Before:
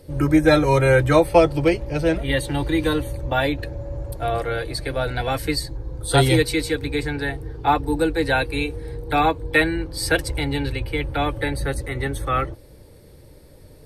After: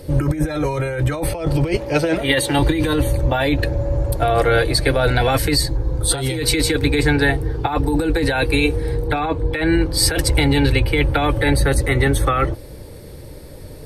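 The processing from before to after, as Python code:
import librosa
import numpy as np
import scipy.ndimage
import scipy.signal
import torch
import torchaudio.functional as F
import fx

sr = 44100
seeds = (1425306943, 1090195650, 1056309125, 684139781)

y = fx.highpass(x, sr, hz=330.0, slope=6, at=(1.77, 2.59))
y = fx.high_shelf(y, sr, hz=6000.0, db=-10.5, at=(9.07, 9.73))
y = fx.over_compress(y, sr, threshold_db=-24.0, ratio=-1.0)
y = y * librosa.db_to_amplitude(7.0)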